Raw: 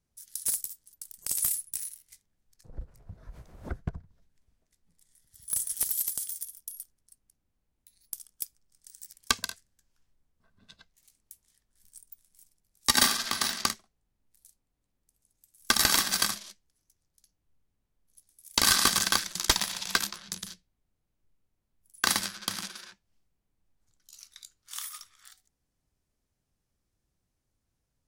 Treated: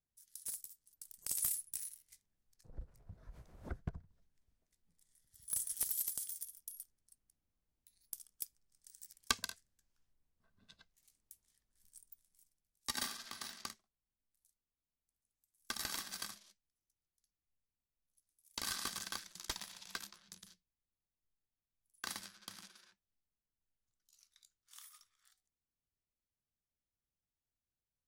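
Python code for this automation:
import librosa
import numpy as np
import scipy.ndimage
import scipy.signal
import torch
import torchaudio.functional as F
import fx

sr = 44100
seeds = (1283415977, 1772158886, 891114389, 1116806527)

y = fx.gain(x, sr, db=fx.line((0.67, -14.5), (1.13, -8.0), (12.07, -8.0), (13.06, -18.0)))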